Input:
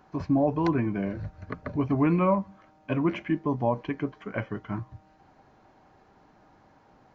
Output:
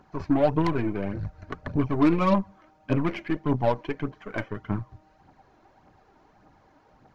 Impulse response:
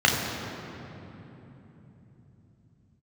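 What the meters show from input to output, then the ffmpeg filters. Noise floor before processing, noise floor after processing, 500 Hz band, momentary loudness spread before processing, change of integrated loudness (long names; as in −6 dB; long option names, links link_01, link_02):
−60 dBFS, −61 dBFS, +2.0 dB, 14 LU, +1.5 dB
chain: -af "aeval=exprs='0.211*(cos(1*acos(clip(val(0)/0.211,-1,1)))-cos(1*PI/2))+0.0188*(cos(3*acos(clip(val(0)/0.211,-1,1)))-cos(3*PI/2))+0.0106*(cos(8*acos(clip(val(0)/0.211,-1,1)))-cos(8*PI/2))':channel_layout=same,aphaser=in_gain=1:out_gain=1:delay=3.4:decay=0.48:speed=1.7:type=triangular,volume=1.5dB"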